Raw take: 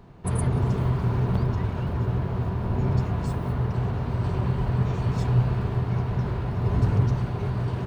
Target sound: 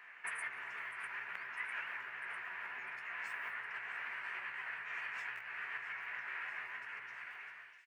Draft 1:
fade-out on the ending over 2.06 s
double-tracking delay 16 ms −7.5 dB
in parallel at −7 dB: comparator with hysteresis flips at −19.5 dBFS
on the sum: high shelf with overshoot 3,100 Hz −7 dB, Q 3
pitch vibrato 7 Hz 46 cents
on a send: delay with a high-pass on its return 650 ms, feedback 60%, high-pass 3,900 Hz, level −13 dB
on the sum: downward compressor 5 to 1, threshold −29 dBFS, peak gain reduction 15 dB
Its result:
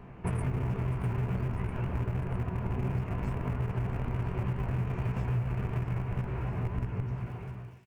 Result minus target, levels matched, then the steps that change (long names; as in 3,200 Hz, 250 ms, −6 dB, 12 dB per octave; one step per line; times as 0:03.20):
2,000 Hz band −18.0 dB; comparator with hysteresis: distortion −17 dB
change: comparator with hysteresis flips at −11.5 dBFS
add after downward compressor: high-pass with resonance 1,800 Hz, resonance Q 4.2